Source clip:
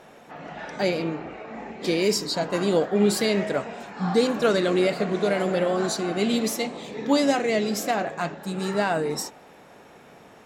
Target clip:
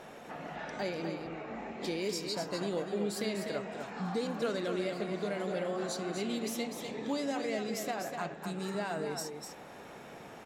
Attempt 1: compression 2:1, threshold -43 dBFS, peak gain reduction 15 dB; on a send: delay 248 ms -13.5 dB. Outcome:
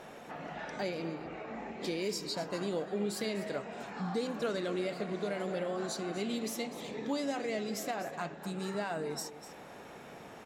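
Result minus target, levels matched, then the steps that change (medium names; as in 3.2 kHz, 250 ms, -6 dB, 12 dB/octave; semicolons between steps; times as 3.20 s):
echo-to-direct -7 dB
change: delay 248 ms -6.5 dB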